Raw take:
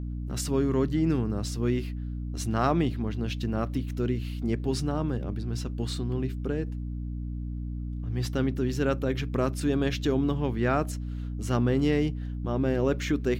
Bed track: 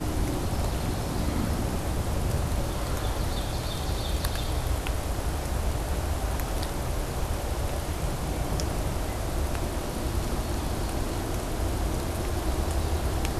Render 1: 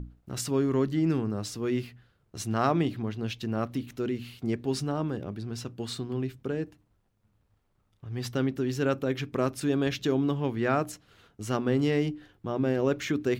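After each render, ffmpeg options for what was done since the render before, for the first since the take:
ffmpeg -i in.wav -af "bandreject=frequency=60:width_type=h:width=6,bandreject=frequency=120:width_type=h:width=6,bandreject=frequency=180:width_type=h:width=6,bandreject=frequency=240:width_type=h:width=6,bandreject=frequency=300:width_type=h:width=6" out.wav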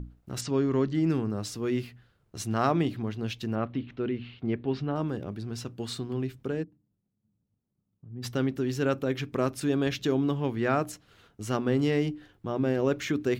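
ffmpeg -i in.wav -filter_complex "[0:a]asplit=3[link_01][link_02][link_03];[link_01]afade=type=out:start_time=0.4:duration=0.02[link_04];[link_02]lowpass=frequency=6700:width=0.5412,lowpass=frequency=6700:width=1.3066,afade=type=in:start_time=0.4:duration=0.02,afade=type=out:start_time=0.93:duration=0.02[link_05];[link_03]afade=type=in:start_time=0.93:duration=0.02[link_06];[link_04][link_05][link_06]amix=inputs=3:normalize=0,asettb=1/sr,asplit=3[link_07][link_08][link_09];[link_07]atrim=end=3.554[link_10];[link_08]atrim=start=3.55:end=4.96,asetpts=PTS-STARTPTS,afade=type=in:duration=0.004:curve=qsin,afade=type=out:start_time=1.406:duration=0.004:curve=qsin,lowpass=frequency=3500:width=0.5412,lowpass=frequency=3500:width=1.3066[link_11];[link_09]atrim=start=4.956[link_12];[link_10][link_11]acrossfade=duration=0.004:curve1=hsin:curve2=qsin[link_13];[link_13][link_12]acrossfade=duration=0.004:curve1=qsin:curve2=hsin,asplit=3[link_14][link_15][link_16];[link_14]afade=type=out:start_time=6.62:duration=0.02[link_17];[link_15]bandpass=frequency=190:width_type=q:width=1.9,afade=type=in:start_time=6.62:duration=0.02,afade=type=out:start_time=8.22:duration=0.02[link_18];[link_16]afade=type=in:start_time=8.22:duration=0.02[link_19];[link_17][link_18][link_19]amix=inputs=3:normalize=0" out.wav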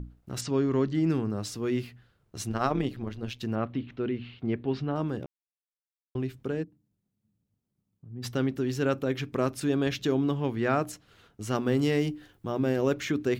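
ffmpeg -i in.wav -filter_complex "[0:a]asettb=1/sr,asplit=3[link_01][link_02][link_03];[link_01]atrim=end=2.494[link_04];[link_02]atrim=start=2.49:end=3.4,asetpts=PTS-STARTPTS,afade=type=in:duration=0.004:curve=qsin,afade=type=out:start_time=0.906:duration=0.004:curve=qsin,tremolo=f=130:d=0.667[link_05];[link_03]atrim=start=3.396[link_06];[link_04][link_05]acrossfade=duration=0.004:curve1=hsin:curve2=qsin[link_07];[link_07][link_06]acrossfade=duration=0.004:curve1=qsin:curve2=hsin,asettb=1/sr,asplit=3[link_08][link_09][link_10];[link_08]atrim=end=11.554[link_11];[link_09]atrim=start=11.55:end=12.94,asetpts=PTS-STARTPTS,afade=type=in:duration=0.004:curve=qsin,afade=type=out:start_time=1.386:duration=0.004:curve=qsin,highshelf=frequency=6900:gain=10.5[link_12];[link_10]atrim=start=12.936[link_13];[link_11][link_12]acrossfade=duration=0.004:curve1=hsin:curve2=qsin[link_14];[link_14][link_13]acrossfade=duration=0.004:curve1=qsin:curve2=hsin,asplit=3[link_15][link_16][link_17];[link_15]atrim=end=5.26,asetpts=PTS-STARTPTS,afade=type=out:start_time=5.256:duration=0.004:curve=hsin[link_18];[link_16]atrim=start=5.26:end=6.15,asetpts=PTS-STARTPTS,volume=0[link_19];[link_17]atrim=start=6.15,asetpts=PTS-STARTPTS,afade=type=in:duration=0.004:curve=hsin[link_20];[link_18][link_19][link_20]concat=n=3:v=0:a=1" out.wav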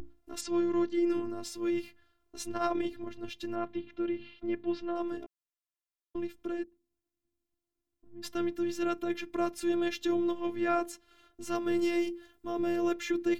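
ffmpeg -i in.wav -af "afftfilt=real='hypot(re,im)*cos(PI*b)':imag='0':win_size=512:overlap=0.75" out.wav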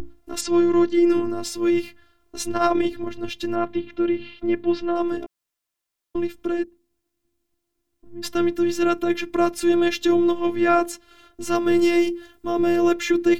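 ffmpeg -i in.wav -af "volume=11dB" out.wav

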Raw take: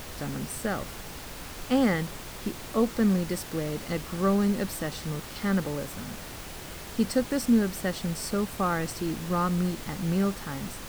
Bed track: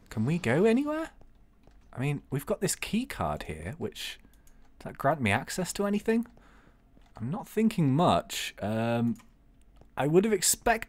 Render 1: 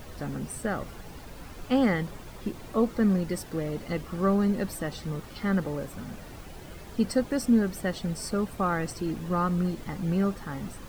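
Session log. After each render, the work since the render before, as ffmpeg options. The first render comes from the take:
ffmpeg -i in.wav -af "afftdn=noise_reduction=10:noise_floor=-41" out.wav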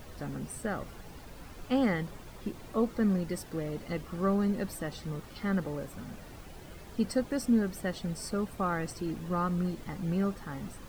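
ffmpeg -i in.wav -af "volume=-4dB" out.wav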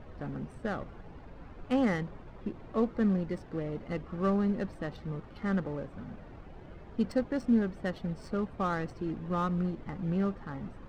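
ffmpeg -i in.wav -af "adynamicsmooth=sensitivity=7.5:basefreq=1700" out.wav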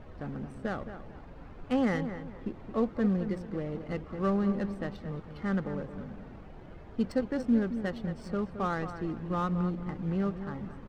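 ffmpeg -i in.wav -filter_complex "[0:a]asplit=2[link_01][link_02];[link_02]adelay=220,lowpass=frequency=2400:poles=1,volume=-10dB,asplit=2[link_03][link_04];[link_04]adelay=220,lowpass=frequency=2400:poles=1,volume=0.33,asplit=2[link_05][link_06];[link_06]adelay=220,lowpass=frequency=2400:poles=1,volume=0.33,asplit=2[link_07][link_08];[link_08]adelay=220,lowpass=frequency=2400:poles=1,volume=0.33[link_09];[link_01][link_03][link_05][link_07][link_09]amix=inputs=5:normalize=0" out.wav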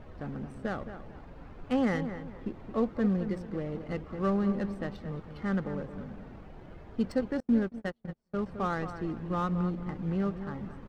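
ffmpeg -i in.wav -filter_complex "[0:a]asettb=1/sr,asplit=3[link_01][link_02][link_03];[link_01]atrim=end=7.404[link_04];[link_02]atrim=start=7.4:end=8.46,asetpts=PTS-STARTPTS,afade=type=in:duration=0.004:curve=qsin,afade=type=out:start_time=1.056:duration=0.004:curve=qsin,agate=range=-38dB:threshold=-32dB:ratio=16:release=100:detection=peak[link_05];[link_03]atrim=start=8.456[link_06];[link_04][link_05]acrossfade=duration=0.004:curve1=hsin:curve2=qsin[link_07];[link_07][link_06]acrossfade=duration=0.004:curve1=qsin:curve2=hsin" out.wav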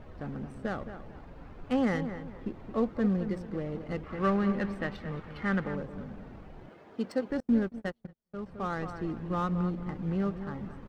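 ffmpeg -i in.wav -filter_complex "[0:a]asettb=1/sr,asplit=3[link_01][link_02][link_03];[link_01]atrim=end=4.034[link_04];[link_02]atrim=start=4.03:end=5.76,asetpts=PTS-STARTPTS,afade=type=in:duration=0.004:curve=qsin,afade=type=out:start_time=1.726:duration=0.004:curve=qsin,equalizer=frequency=2000:width=0.75:gain=8[link_05];[link_03]atrim=start=5.756[link_06];[link_04][link_05]acrossfade=duration=0.004:curve1=hsin:curve2=qsin[link_07];[link_07][link_06]acrossfade=duration=0.004:curve1=qsin:curve2=hsin,asettb=1/sr,asplit=3[link_08][link_09][link_10];[link_08]atrim=end=6.694[link_11];[link_09]atrim=start=6.69:end=7.3,asetpts=PTS-STARTPTS,afade=type=in:duration=0.004:curve=qsin,afade=type=out:start_time=0.606:duration=0.004:curve=qsin,highpass=250[link_12];[link_10]atrim=start=7.296[link_13];[link_11][link_12]acrossfade=duration=0.004:curve1=hsin:curve2=qsin[link_14];[link_14][link_13]acrossfade=duration=0.004:curve1=qsin:curve2=hsin,asplit=2[link_15][link_16];[link_15]atrim=end=8.07,asetpts=PTS-STARTPTS,afade=type=out:start_time=8.066:duration=0.004:curve=hsin:silence=0.141254[link_17];[link_16]atrim=start=8.07,asetpts=PTS-STARTPTS,afade=type=in:duration=0.86:silence=0.141254[link_18];[link_17][link_18]concat=n=2:v=0:a=1" out.wav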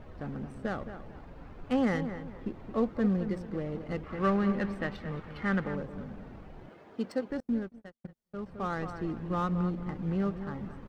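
ffmpeg -i in.wav -filter_complex "[0:a]asplit=2[link_01][link_02];[link_01]atrim=end=8.04,asetpts=PTS-STARTPTS,afade=type=out:start_time=6.68:duration=1.36:curve=qsin[link_03];[link_02]atrim=start=8.04,asetpts=PTS-STARTPTS,afade=type=in:duration=0.004:curve=hsin[link_04];[link_03][link_04]concat=n=2:v=0:a=1" out.wav

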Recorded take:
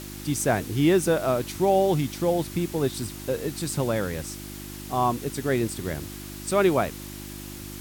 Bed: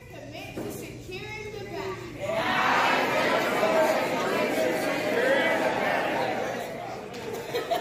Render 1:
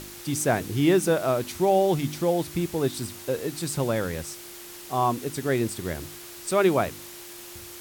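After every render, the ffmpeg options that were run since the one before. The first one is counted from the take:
ffmpeg -i in.wav -af "bandreject=frequency=50:width_type=h:width=4,bandreject=frequency=100:width_type=h:width=4,bandreject=frequency=150:width_type=h:width=4,bandreject=frequency=200:width_type=h:width=4,bandreject=frequency=250:width_type=h:width=4,bandreject=frequency=300:width_type=h:width=4" out.wav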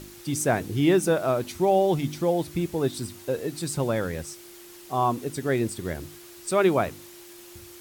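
ffmpeg -i in.wav -af "afftdn=noise_reduction=6:noise_floor=-42" out.wav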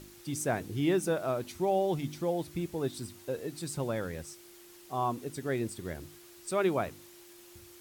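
ffmpeg -i in.wav -af "volume=-7.5dB" out.wav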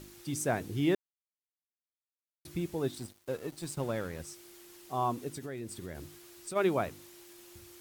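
ffmpeg -i in.wav -filter_complex "[0:a]asettb=1/sr,asplit=3[link_01][link_02][link_03];[link_01]atrim=end=2.954[link_04];[link_02]atrim=start=2.95:end=4.2,asetpts=PTS-STARTPTS,afade=type=in:duration=0.004:curve=qsin,afade=type=out:start_time=1.246:duration=0.004:curve=qsin,aeval=exprs='sgn(val(0))*max(abs(val(0))-0.00355,0)':channel_layout=same[link_05];[link_03]atrim=start=4.196[link_06];[link_04][link_05]acrossfade=duration=0.004:curve1=hsin:curve2=qsin[link_07];[link_07][link_06]acrossfade=duration=0.004:curve1=qsin:curve2=hsin,asplit=3[link_08][link_09][link_10];[link_08]afade=type=out:start_time=5.29:duration=0.02[link_11];[link_09]acompressor=threshold=-37dB:ratio=4:attack=3.2:release=140:knee=1:detection=peak,afade=type=in:start_time=5.29:duration=0.02,afade=type=out:start_time=6.55:duration=0.02[link_12];[link_10]afade=type=in:start_time=6.55:duration=0.02[link_13];[link_11][link_12][link_13]amix=inputs=3:normalize=0,asplit=3[link_14][link_15][link_16];[link_14]atrim=end=0.95,asetpts=PTS-STARTPTS,afade=type=out:start_time=0.946:duration=0.004:curve=hsin[link_17];[link_15]atrim=start=0.95:end=2.45,asetpts=PTS-STARTPTS,volume=0[link_18];[link_16]atrim=start=2.45,asetpts=PTS-STARTPTS,afade=type=in:duration=0.004:curve=hsin[link_19];[link_17][link_18][link_19]concat=n=3:v=0:a=1" out.wav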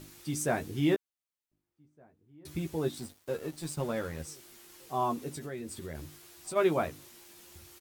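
ffmpeg -i in.wav -filter_complex "[0:a]asplit=2[link_01][link_02];[link_02]adelay=13,volume=-5dB[link_03];[link_01][link_03]amix=inputs=2:normalize=0,asplit=2[link_04][link_05];[link_05]adelay=1516,volume=-28dB,highshelf=frequency=4000:gain=-34.1[link_06];[link_04][link_06]amix=inputs=2:normalize=0" out.wav

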